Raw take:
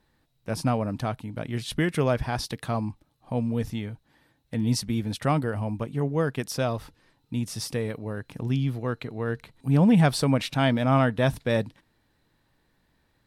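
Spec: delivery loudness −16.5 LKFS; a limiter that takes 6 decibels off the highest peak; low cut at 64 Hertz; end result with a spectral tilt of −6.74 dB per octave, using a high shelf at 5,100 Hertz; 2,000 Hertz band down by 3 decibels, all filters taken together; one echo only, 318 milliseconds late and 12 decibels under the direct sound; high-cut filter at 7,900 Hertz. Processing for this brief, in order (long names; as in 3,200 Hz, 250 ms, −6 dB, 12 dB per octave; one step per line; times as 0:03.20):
high-pass filter 64 Hz
low-pass filter 7,900 Hz
parametric band 2,000 Hz −3 dB
high-shelf EQ 5,100 Hz −7 dB
brickwall limiter −16.5 dBFS
single-tap delay 318 ms −12 dB
level +12 dB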